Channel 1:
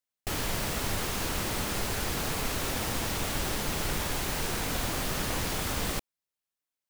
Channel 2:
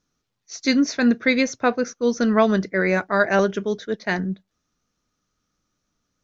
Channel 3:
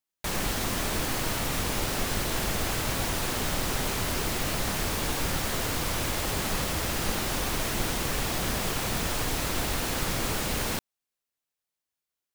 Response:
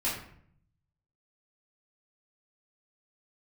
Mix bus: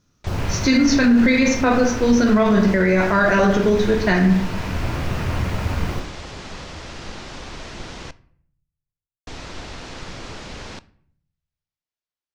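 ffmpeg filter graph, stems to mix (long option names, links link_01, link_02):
-filter_complex "[0:a]afwtdn=0.0158,volume=-0.5dB,asplit=2[link_01][link_02];[link_02]volume=-5.5dB[link_03];[1:a]volume=3dB,asplit=3[link_04][link_05][link_06];[link_05]volume=-4.5dB[link_07];[2:a]lowpass=frequency=6200:width=0.5412,lowpass=frequency=6200:width=1.3066,volume=-5.5dB,asplit=3[link_08][link_09][link_10];[link_08]atrim=end=8.11,asetpts=PTS-STARTPTS,afade=type=out:start_time=8.106:duration=0.004:curve=hsin[link_11];[link_09]atrim=start=8.11:end=9.27,asetpts=PTS-STARTPTS,volume=0[link_12];[link_10]atrim=start=9.27,asetpts=PTS-STARTPTS,afade=type=in:duration=0.004:curve=hsin[link_13];[link_11][link_12][link_13]concat=n=3:v=0:a=1,asplit=2[link_14][link_15];[link_15]volume=-22.5dB[link_16];[link_06]apad=whole_len=304118[link_17];[link_01][link_17]sidechaincompress=threshold=-25dB:ratio=8:attack=16:release=969[link_18];[link_18][link_04]amix=inputs=2:normalize=0,equalizer=frequency=94:width_type=o:width=2:gain=15,acompressor=threshold=-14dB:ratio=6,volume=0dB[link_19];[3:a]atrim=start_sample=2205[link_20];[link_03][link_07][link_16]amix=inputs=3:normalize=0[link_21];[link_21][link_20]afir=irnorm=-1:irlink=0[link_22];[link_14][link_19][link_22]amix=inputs=3:normalize=0,alimiter=limit=-8dB:level=0:latency=1:release=34"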